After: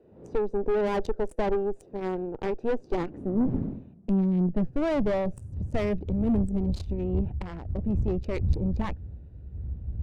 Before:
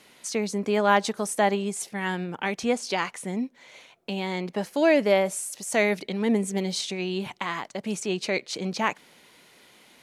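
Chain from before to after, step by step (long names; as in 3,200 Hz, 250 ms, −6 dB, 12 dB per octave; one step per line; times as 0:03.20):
adaptive Wiener filter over 41 samples
wind on the microphone 87 Hz −36 dBFS
high-pass filter sweep 420 Hz → 63 Hz, 0:02.55–0:06.31
tube saturation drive 26 dB, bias 0.65
spectral tilt −3 dB per octave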